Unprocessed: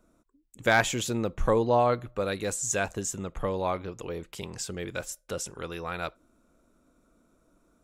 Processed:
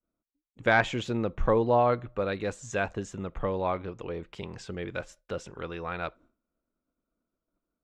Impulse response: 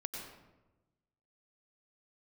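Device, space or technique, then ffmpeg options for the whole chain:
hearing-loss simulation: -af "lowpass=3100,agate=range=0.0224:threshold=0.00251:ratio=3:detection=peak"

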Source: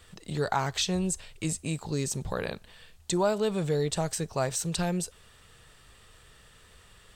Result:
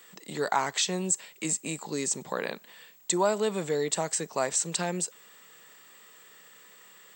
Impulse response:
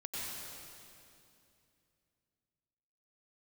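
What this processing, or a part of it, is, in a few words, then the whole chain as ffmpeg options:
old television with a line whistle: -af "highpass=f=200:w=0.5412,highpass=f=200:w=1.3066,equalizer=f=1000:t=q:w=4:g=4,equalizer=f=2000:t=q:w=4:g=6,equalizer=f=7500:t=q:w=4:g=10,lowpass=f=8600:w=0.5412,lowpass=f=8600:w=1.3066,aeval=exprs='val(0)+0.00178*sin(2*PI*15734*n/s)':c=same"

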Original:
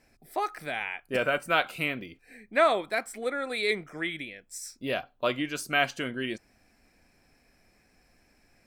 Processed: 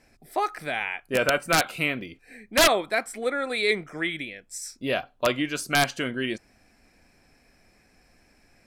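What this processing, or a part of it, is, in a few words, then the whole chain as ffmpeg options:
overflowing digital effects unit: -af "aeval=exprs='(mod(5.31*val(0)+1,2)-1)/5.31':c=same,lowpass=13000,volume=1.58"

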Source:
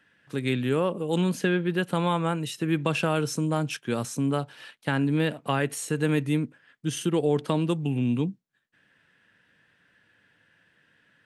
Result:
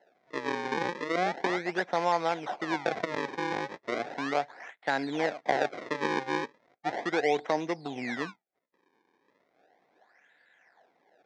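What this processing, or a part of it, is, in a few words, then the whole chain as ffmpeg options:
circuit-bent sampling toy: -af "acrusher=samples=37:mix=1:aa=0.000001:lfo=1:lforange=59.2:lforate=0.36,highpass=460,equalizer=f=740:t=q:w=4:g=9,equalizer=f=1200:t=q:w=4:g=-5,equalizer=f=2000:t=q:w=4:g=6,equalizer=f=2900:t=q:w=4:g=-9,equalizer=f=4500:t=q:w=4:g=-5,lowpass=f=4900:w=0.5412,lowpass=f=4900:w=1.3066"

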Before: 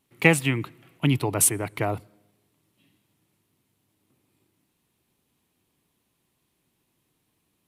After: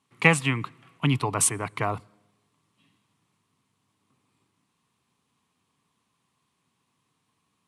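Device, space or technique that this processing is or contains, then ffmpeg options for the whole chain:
car door speaker: -af "highpass=96,equalizer=f=340:t=q:w=4:g=-8,equalizer=f=580:t=q:w=4:g=-5,equalizer=f=1100:t=q:w=4:g=10,lowpass=f=9500:w=0.5412,lowpass=f=9500:w=1.3066"

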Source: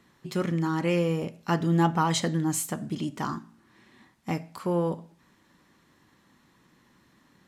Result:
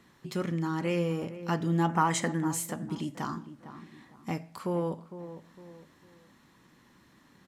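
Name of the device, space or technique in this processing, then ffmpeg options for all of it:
parallel compression: -filter_complex "[0:a]asettb=1/sr,asplit=3[s0][s1][s2];[s0]atrim=end=1.894[s3];[s1]atrim=start=1.89:end=2.48,asetpts=PTS-STARTPTS,afade=t=in:d=0.004:c=qsin,afade=t=out:st=0.586:d=0.004:c=qsin,equalizer=f=125:t=o:w=1:g=-4,equalizer=f=250:t=o:w=1:g=4,equalizer=f=1000:t=o:w=1:g=4,equalizer=f=2000:t=o:w=1:g=7,equalizer=f=4000:t=o:w=1:g=-8,equalizer=f=8000:t=o:w=1:g=6[s4];[s2]atrim=start=2.476[s5];[s3][s4]acrossfade=d=0.004:c1=hsin:c2=qsin[s6];[s6][s5]acrossfade=d=0.004:c1=qsin:c2=hsin,asplit=2[s7][s8];[s8]adelay=456,lowpass=f=1300:p=1,volume=0.2,asplit=2[s9][s10];[s10]adelay=456,lowpass=f=1300:p=1,volume=0.32,asplit=2[s11][s12];[s12]adelay=456,lowpass=f=1300:p=1,volume=0.32[s13];[s7][s9][s11][s13]amix=inputs=4:normalize=0,asplit=2[s14][s15];[s15]acompressor=threshold=0.00631:ratio=6,volume=1[s16];[s14][s16]amix=inputs=2:normalize=0,volume=0.562"

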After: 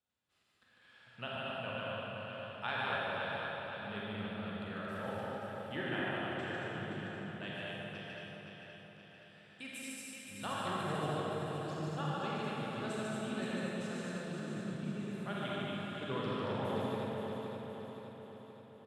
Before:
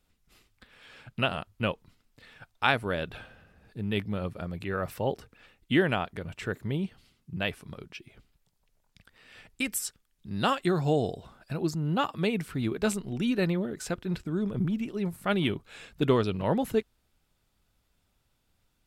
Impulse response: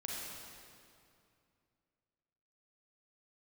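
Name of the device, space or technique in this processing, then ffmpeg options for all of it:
station announcement: -filter_complex "[0:a]highpass=340,lowpass=4500,firequalizer=gain_entry='entry(110,0);entry(180,-10);entry(320,-18);entry(640,-15);entry(1100,-14);entry(2200,-19);entry(3100,-14);entry(5400,-15);entry(8600,-5)':delay=0.05:min_phase=1,equalizer=f=1700:t=o:w=0.22:g=5,aecho=1:1:148.7|227.4:0.708|0.631,aecho=1:1:521|1042|1563|2084|2605|3126|3647:0.501|0.266|0.141|0.0746|0.0395|0.021|0.0111[s0];[1:a]atrim=start_sample=2205[s1];[s0][s1]afir=irnorm=-1:irlink=0,volume=1.58"

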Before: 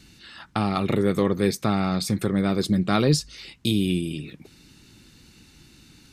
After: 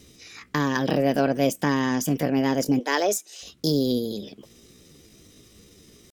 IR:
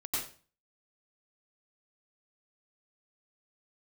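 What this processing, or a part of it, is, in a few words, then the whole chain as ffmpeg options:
chipmunk voice: -filter_complex "[0:a]asplit=3[s0][s1][s2];[s0]afade=t=out:st=2.79:d=0.02[s3];[s1]highpass=f=270:w=0.5412,highpass=f=270:w=1.3066,afade=t=in:st=2.79:d=0.02,afade=t=out:st=3.43:d=0.02[s4];[s2]afade=t=in:st=3.43:d=0.02[s5];[s3][s4][s5]amix=inputs=3:normalize=0,asetrate=60591,aresample=44100,atempo=0.727827"

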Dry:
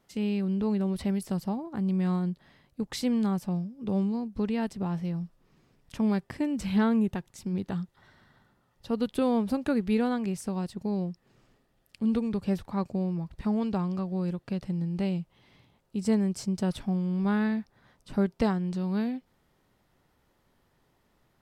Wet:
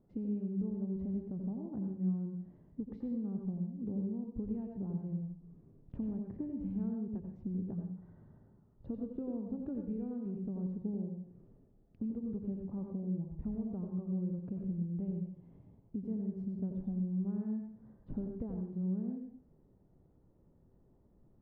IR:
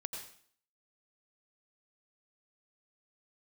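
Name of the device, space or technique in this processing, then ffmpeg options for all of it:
television next door: -filter_complex "[0:a]acompressor=threshold=0.00891:ratio=5,lowpass=380[s0];[1:a]atrim=start_sample=2205[s1];[s0][s1]afir=irnorm=-1:irlink=0,volume=2.11"

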